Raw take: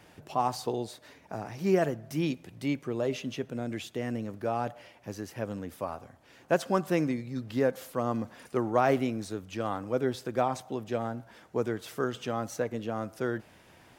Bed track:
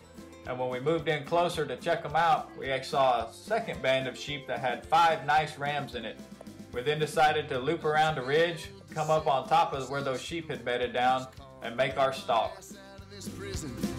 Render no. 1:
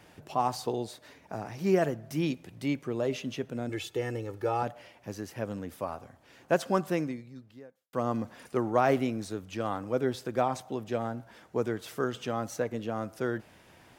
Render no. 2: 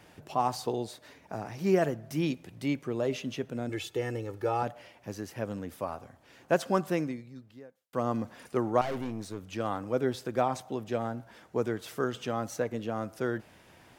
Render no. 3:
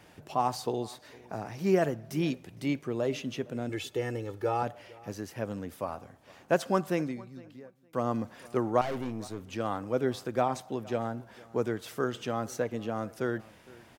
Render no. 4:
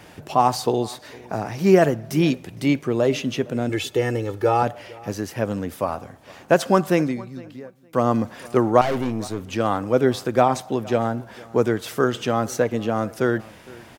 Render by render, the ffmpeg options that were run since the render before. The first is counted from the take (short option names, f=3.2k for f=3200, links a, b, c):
-filter_complex "[0:a]asettb=1/sr,asplit=3[a][b][c];[a]atrim=end=3.694[d];[b]atrim=start=3.69:end=4.63,asetpts=PTS-STARTPTS,afade=t=in:d=0.004:c=qsin,afade=t=out:st=0.936:d=0.004:c=qsin,aecho=1:1:2.3:0.78,atrim=end_sample=41454[e];[c]atrim=start=4.626[f];[d][e]acrossfade=d=0.004:c1=hsin:c2=qsin[g];[g][f]acrossfade=d=0.004:c1=qsin:c2=hsin,asplit=2[h][i];[h]atrim=end=7.93,asetpts=PTS-STARTPTS,afade=t=out:st=6.81:d=1.12:c=qua[j];[i]atrim=start=7.93,asetpts=PTS-STARTPTS,afade=t=in:d=0.004:c=hsin[k];[j][k]concat=n=2:v=0:a=1"
-filter_complex "[0:a]asettb=1/sr,asplit=3[a][b][c];[a]atrim=end=8.814[d];[b]atrim=start=8.81:end=9.41,asetpts=PTS-STARTPTS,afade=t=in:d=0.004:c=qsin,afade=t=out:st=0.596:d=0.004:c=qsin,aeval=exprs='(tanh(35.5*val(0)+0.5)-tanh(0.5))/35.5':c=same[e];[c]atrim=start=9.406[f];[d][e]acrossfade=d=0.004:c1=hsin:c2=qsin[g];[g][f]acrossfade=d=0.004:c1=qsin:c2=hsin"
-filter_complex "[0:a]asplit=2[a][b];[b]adelay=461,lowpass=f=4.4k:p=1,volume=-22.5dB,asplit=2[c][d];[d]adelay=461,lowpass=f=4.4k:p=1,volume=0.19[e];[a][c][e]amix=inputs=3:normalize=0"
-af "volume=10.5dB,alimiter=limit=-3dB:level=0:latency=1"